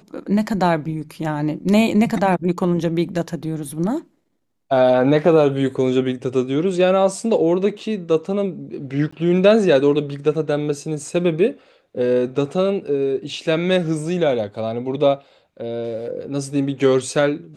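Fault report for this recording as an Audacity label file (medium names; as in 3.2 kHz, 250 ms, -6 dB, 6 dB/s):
9.110000	9.120000	dropout 15 ms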